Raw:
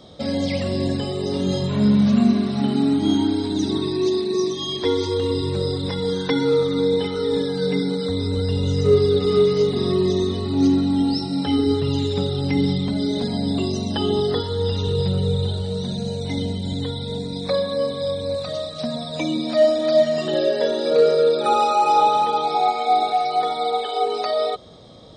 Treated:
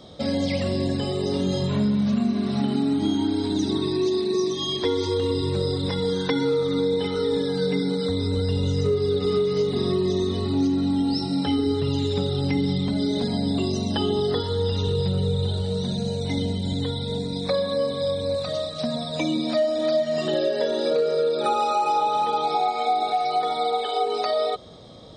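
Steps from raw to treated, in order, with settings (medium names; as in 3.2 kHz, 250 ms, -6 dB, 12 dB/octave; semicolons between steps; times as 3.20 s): compression, threshold -19 dBFS, peak gain reduction 8.5 dB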